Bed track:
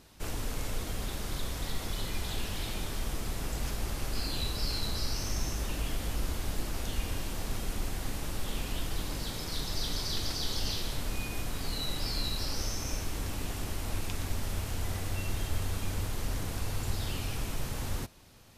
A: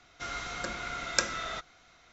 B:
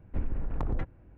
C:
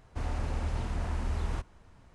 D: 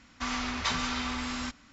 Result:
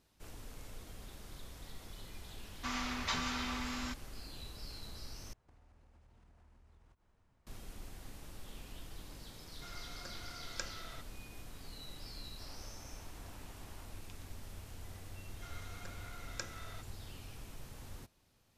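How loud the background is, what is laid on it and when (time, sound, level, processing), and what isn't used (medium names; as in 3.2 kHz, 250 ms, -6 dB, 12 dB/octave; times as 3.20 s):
bed track -15 dB
2.43 s: add D -6 dB
5.33 s: replace with C -15.5 dB + compression 16:1, threshold -44 dBFS
9.41 s: add A -15 dB
12.24 s: add C -16.5 dB + high-pass 550 Hz 24 dB/octave
15.21 s: add A -16 dB
not used: B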